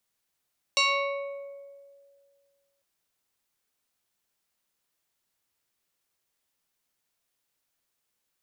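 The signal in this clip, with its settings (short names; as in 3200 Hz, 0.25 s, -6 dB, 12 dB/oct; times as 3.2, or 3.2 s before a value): FM tone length 2.05 s, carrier 560 Hz, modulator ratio 2.97, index 3.2, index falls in 1.67 s exponential, decay 2.07 s, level -18.5 dB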